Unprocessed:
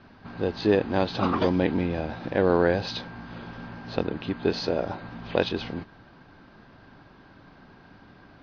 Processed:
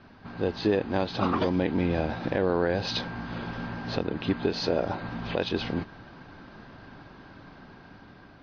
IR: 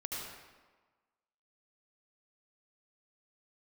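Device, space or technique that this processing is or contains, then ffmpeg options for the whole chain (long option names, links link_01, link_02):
low-bitrate web radio: -af "dynaudnorm=framelen=820:gausssize=5:maxgain=7.5dB,alimiter=limit=-13dB:level=0:latency=1:release=281" -ar 44100 -c:a libmp3lame -b:a 48k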